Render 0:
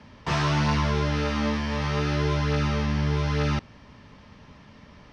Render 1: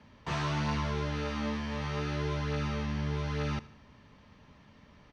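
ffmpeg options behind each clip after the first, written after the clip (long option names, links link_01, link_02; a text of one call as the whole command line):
ffmpeg -i in.wav -af "bandreject=frequency=5200:width=12,aecho=1:1:77|154|231|308:0.112|0.0527|0.0248|0.0116,volume=-8dB" out.wav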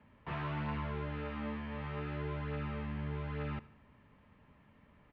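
ffmpeg -i in.wav -af "lowpass=frequency=2800:width=0.5412,lowpass=frequency=2800:width=1.3066,volume=-6dB" out.wav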